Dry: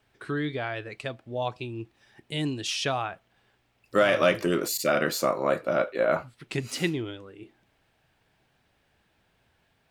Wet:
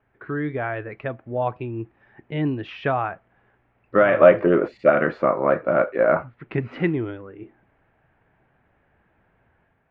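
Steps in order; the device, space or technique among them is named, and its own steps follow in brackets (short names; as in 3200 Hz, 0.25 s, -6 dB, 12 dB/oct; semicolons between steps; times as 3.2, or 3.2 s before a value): 4.19–4.9 dynamic EQ 570 Hz, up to +7 dB, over -34 dBFS, Q 1.1; action camera in a waterproof case (LPF 2000 Hz 24 dB/oct; AGC gain up to 4.5 dB; gain +1.5 dB; AAC 96 kbps 48000 Hz)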